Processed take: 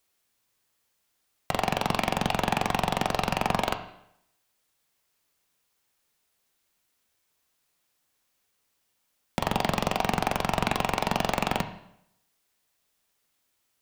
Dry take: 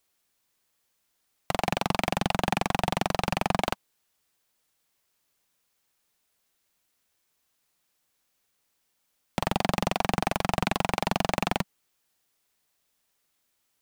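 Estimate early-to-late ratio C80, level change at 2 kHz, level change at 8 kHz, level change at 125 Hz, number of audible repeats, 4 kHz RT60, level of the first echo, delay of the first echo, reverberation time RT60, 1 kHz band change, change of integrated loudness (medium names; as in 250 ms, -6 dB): 13.5 dB, +0.5 dB, 0.0 dB, -0.5 dB, no echo, 0.65 s, no echo, no echo, 0.75 s, +1.0 dB, +0.5 dB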